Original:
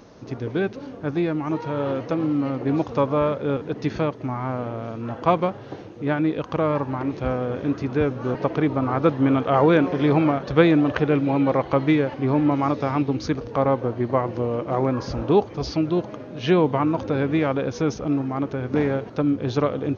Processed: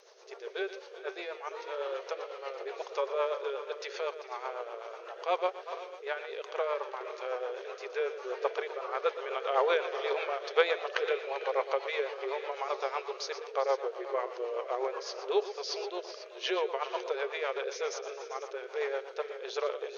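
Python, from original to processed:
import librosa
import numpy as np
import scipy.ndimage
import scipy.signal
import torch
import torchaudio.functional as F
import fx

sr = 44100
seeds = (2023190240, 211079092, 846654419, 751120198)

p1 = fx.high_shelf(x, sr, hz=2200.0, db=10.0)
p2 = p1 + fx.echo_multitap(p1, sr, ms=(119, 394, 447, 493), db=(-12.5, -15.0, -16.5, -14.5), dry=0)
p3 = fx.rotary(p2, sr, hz=8.0)
p4 = fx.brickwall_highpass(p3, sr, low_hz=370.0)
y = p4 * librosa.db_to_amplitude(-7.5)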